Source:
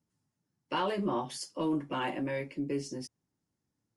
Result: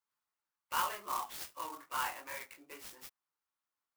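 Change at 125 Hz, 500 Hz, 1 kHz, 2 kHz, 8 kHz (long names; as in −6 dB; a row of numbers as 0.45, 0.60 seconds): −24.0, −16.5, −1.5, −1.5, +1.0 decibels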